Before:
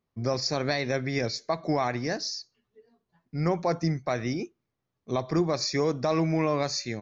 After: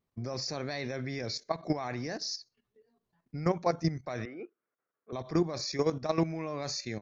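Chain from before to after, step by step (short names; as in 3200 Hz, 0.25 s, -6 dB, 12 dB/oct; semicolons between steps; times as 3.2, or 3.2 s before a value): level quantiser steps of 12 dB; 4.25–5.13 speaker cabinet 440–2100 Hz, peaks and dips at 470 Hz +4 dB, 850 Hz -5 dB, 1400 Hz +9 dB; vibrato 0.67 Hz 14 cents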